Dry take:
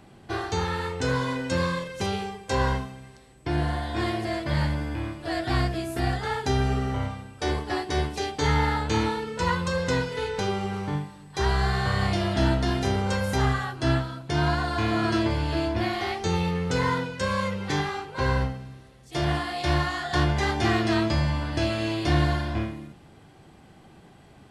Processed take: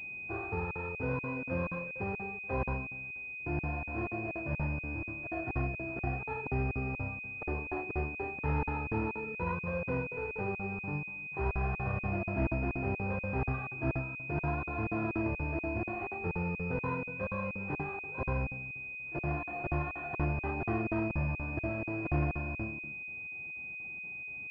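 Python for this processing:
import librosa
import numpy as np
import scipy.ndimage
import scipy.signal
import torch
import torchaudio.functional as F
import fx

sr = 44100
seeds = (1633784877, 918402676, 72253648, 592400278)

y = fx.buffer_crackle(x, sr, first_s=0.71, period_s=0.24, block=2048, kind='zero')
y = fx.pwm(y, sr, carrier_hz=2500.0)
y = y * 10.0 ** (-8.0 / 20.0)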